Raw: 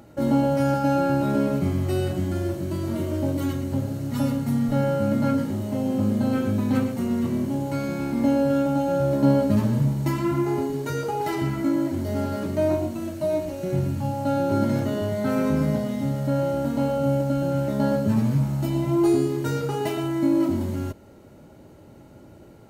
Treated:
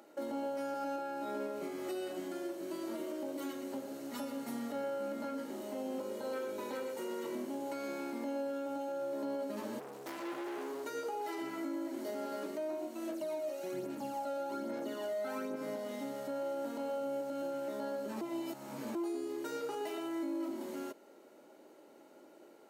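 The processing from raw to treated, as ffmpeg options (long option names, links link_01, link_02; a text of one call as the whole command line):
ffmpeg -i in.wav -filter_complex "[0:a]asettb=1/sr,asplit=3[link_01][link_02][link_03];[link_01]atrim=end=0.964[link_04];[link_02]atrim=start=0.96:end=1.95,asetpts=PTS-STARTPTS,afade=type=in:duration=0.004:curve=qsin,afade=type=out:start_time=0.986:duration=0.004:curve=qsin,asplit=2[link_05][link_06];[link_06]adelay=24,volume=-4.5dB[link_07];[link_05][link_07]amix=inputs=2:normalize=0,atrim=end_sample=43659[link_08];[link_03]atrim=start=1.946[link_09];[link_04][link_08]acrossfade=duration=0.004:curve1=hsin:curve2=qsin[link_10];[link_10][link_09]acrossfade=duration=0.004:curve1=qsin:curve2=hsin,asettb=1/sr,asplit=3[link_11][link_12][link_13];[link_11]atrim=end=5.994[link_14];[link_12]atrim=start=5.99:end=7.35,asetpts=PTS-STARTPTS,afade=type=in:duration=0.004:curve=qsin,afade=type=out:start_time=1.356:duration=0.004:curve=qsin,aecho=1:1:2.1:0.65,atrim=end_sample=59976[link_15];[link_13]atrim=start=7.346[link_16];[link_14][link_15]acrossfade=duration=0.004:curve1=hsin:curve2=qsin[link_17];[link_17][link_16]acrossfade=duration=0.004:curve1=qsin:curve2=hsin,asettb=1/sr,asplit=3[link_18][link_19][link_20];[link_18]atrim=end=9.794[link_21];[link_19]atrim=start=9.79:end=10.86,asetpts=PTS-STARTPTS,afade=type=in:duration=0.004:curve=qsin,afade=type=out:start_time=1.066:duration=0.004:curve=qsin,volume=30dB,asoftclip=hard,volume=-30dB[link_22];[link_20]atrim=start=10.856[link_23];[link_21][link_22]acrossfade=duration=0.004:curve1=hsin:curve2=qsin[link_24];[link_24][link_23]acrossfade=duration=0.004:curve1=qsin:curve2=hsin,asettb=1/sr,asplit=3[link_25][link_26][link_27];[link_25]atrim=end=13.094[link_28];[link_26]atrim=start=13.09:end=15.56,asetpts=PTS-STARTPTS,afade=type=in:duration=0.004:curve=qsin,afade=type=out:start_time=2.466:duration=0.004:curve=qsin,aphaser=in_gain=1:out_gain=1:delay=1.6:decay=0.53:speed=1.2:type=sinusoidal[link_29];[link_27]atrim=start=15.556[link_30];[link_28][link_29]acrossfade=duration=0.004:curve1=hsin:curve2=qsin[link_31];[link_31][link_30]acrossfade=duration=0.004:curve1=qsin:curve2=hsin,asplit=3[link_32][link_33][link_34];[link_32]atrim=end=18.212[link_35];[link_33]atrim=start=18.208:end=18.952,asetpts=PTS-STARTPTS,areverse[link_36];[link_34]atrim=start=18.948[link_37];[link_35][link_36]acrossfade=duration=0.004:curve1=hsin:curve2=hsin[link_38];[link_38][link_37]acrossfade=duration=0.004:curve1=hsin:curve2=hsin,highpass=frequency=310:width=0.5412,highpass=frequency=310:width=1.3066,alimiter=level_in=0.5dB:limit=-24dB:level=0:latency=1:release=193,volume=-0.5dB,volume=-6.5dB" out.wav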